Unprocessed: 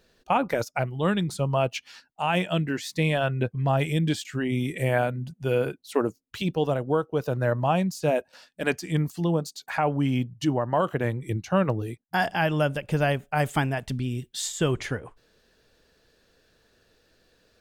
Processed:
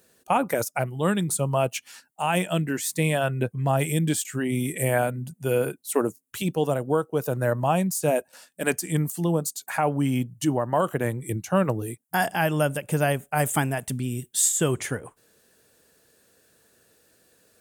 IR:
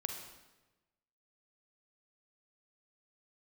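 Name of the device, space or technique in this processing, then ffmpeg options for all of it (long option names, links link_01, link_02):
budget condenser microphone: -af "highpass=100,highshelf=frequency=6500:width_type=q:width=1.5:gain=12.5,volume=1dB"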